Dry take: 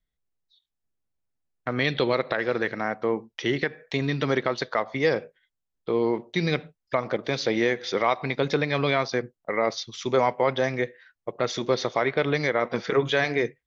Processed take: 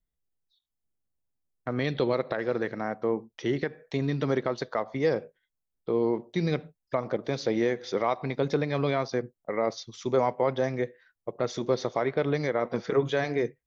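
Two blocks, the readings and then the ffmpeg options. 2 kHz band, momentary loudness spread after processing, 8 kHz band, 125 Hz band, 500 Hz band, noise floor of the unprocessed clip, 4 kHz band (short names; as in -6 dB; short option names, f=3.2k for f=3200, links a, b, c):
-8.5 dB, 6 LU, n/a, -1.0 dB, -2.0 dB, -83 dBFS, -9.0 dB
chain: -af "equalizer=f=2.7k:t=o:w=2.4:g=-9,volume=-1dB"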